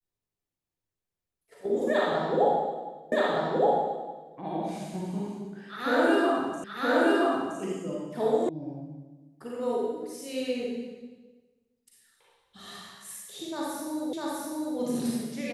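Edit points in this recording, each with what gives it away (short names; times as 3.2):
3.12 repeat of the last 1.22 s
6.64 repeat of the last 0.97 s
8.49 sound cut off
14.13 repeat of the last 0.65 s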